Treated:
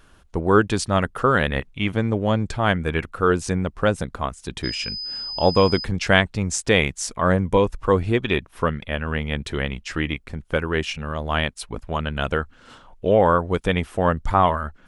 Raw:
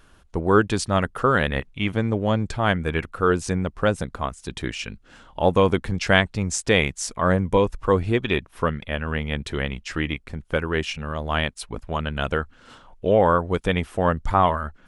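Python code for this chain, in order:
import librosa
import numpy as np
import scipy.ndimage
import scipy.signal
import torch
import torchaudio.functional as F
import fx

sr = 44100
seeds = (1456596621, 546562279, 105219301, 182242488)

y = fx.dmg_tone(x, sr, hz=5000.0, level_db=-29.0, at=(4.63, 5.83), fade=0.02)
y = y * librosa.db_to_amplitude(1.0)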